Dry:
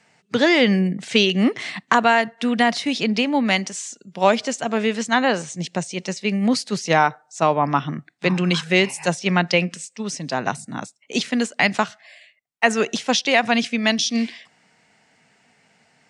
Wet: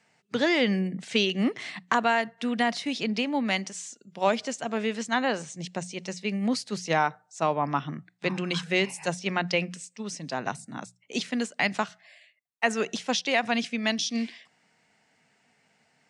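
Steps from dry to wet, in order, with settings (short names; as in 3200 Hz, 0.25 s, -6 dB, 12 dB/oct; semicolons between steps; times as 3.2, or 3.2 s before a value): notches 60/120/180 Hz; gain -7.5 dB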